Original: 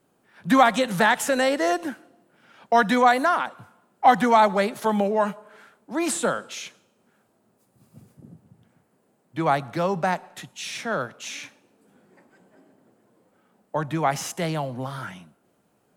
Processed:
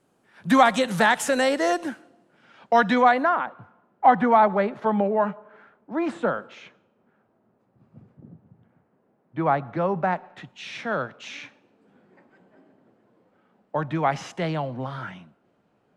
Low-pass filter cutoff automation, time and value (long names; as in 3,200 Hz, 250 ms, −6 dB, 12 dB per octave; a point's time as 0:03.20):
0:01.72 11,000 Hz
0:02.91 4,400 Hz
0:03.36 1,800 Hz
0:09.95 1,800 Hz
0:10.83 3,500 Hz